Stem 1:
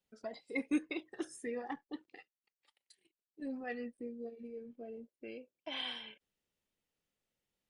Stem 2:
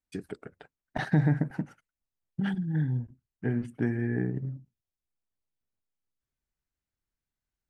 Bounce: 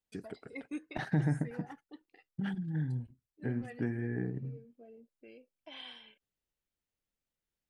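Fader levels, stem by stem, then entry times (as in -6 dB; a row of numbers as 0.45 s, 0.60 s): -7.5 dB, -6.0 dB; 0.00 s, 0.00 s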